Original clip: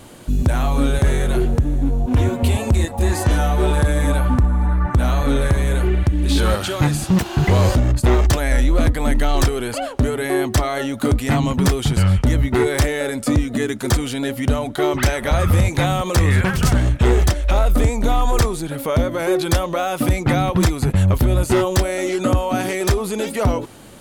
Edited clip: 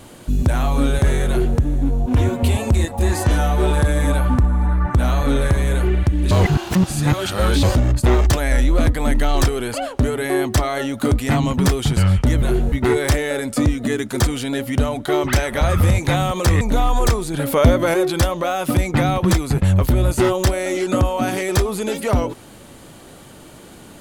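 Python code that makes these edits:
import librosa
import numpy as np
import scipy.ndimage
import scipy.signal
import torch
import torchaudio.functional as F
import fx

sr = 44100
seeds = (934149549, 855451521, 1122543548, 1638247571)

y = fx.edit(x, sr, fx.duplicate(start_s=1.28, length_s=0.3, to_s=12.42),
    fx.reverse_span(start_s=6.31, length_s=1.32),
    fx.cut(start_s=16.31, length_s=1.62),
    fx.clip_gain(start_s=18.66, length_s=0.6, db=5.0), tone=tone)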